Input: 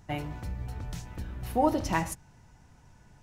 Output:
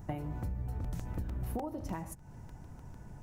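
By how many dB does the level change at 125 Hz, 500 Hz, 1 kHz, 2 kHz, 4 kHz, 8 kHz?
-1.5, -11.5, -13.5, -15.5, -15.5, -11.0 dB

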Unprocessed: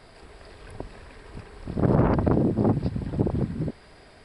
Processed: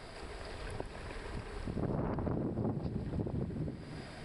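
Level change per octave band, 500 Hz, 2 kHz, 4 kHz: -12.5 dB, -6.0 dB, n/a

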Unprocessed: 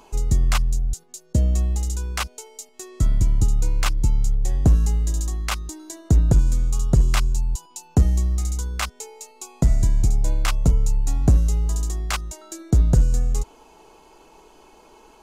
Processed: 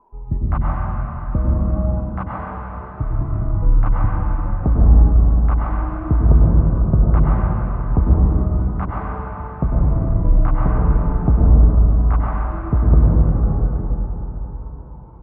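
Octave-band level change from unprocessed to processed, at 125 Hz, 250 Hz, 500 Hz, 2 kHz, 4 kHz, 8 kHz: +5.0 dB, +6.5 dB, +6.5 dB, -3.5 dB, under -25 dB, under -40 dB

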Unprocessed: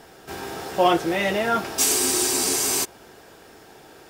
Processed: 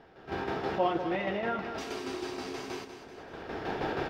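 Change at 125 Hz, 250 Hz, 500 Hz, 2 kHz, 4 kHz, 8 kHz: -4.5, -7.5, -7.5, -8.5, -16.0, -31.5 dB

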